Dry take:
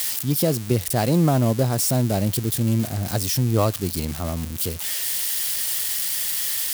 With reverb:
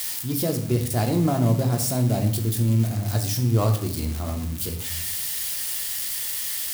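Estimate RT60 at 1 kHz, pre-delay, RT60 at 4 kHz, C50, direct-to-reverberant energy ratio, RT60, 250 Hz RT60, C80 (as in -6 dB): 0.65 s, 3 ms, 0.50 s, 9.0 dB, 3.0 dB, 0.70 s, 1.3 s, 12.5 dB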